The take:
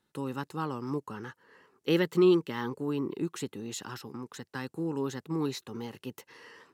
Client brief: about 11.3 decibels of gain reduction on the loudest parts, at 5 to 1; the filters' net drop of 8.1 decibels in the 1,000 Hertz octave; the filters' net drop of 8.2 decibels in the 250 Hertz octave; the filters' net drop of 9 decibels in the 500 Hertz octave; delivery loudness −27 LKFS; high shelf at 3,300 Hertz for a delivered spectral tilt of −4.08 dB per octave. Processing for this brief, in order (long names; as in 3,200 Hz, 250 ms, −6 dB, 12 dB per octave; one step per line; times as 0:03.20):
parametric band 250 Hz −8 dB
parametric band 500 Hz −8 dB
parametric band 1,000 Hz −8 dB
high-shelf EQ 3,300 Hz +4 dB
downward compressor 5 to 1, threshold −39 dBFS
level +17.5 dB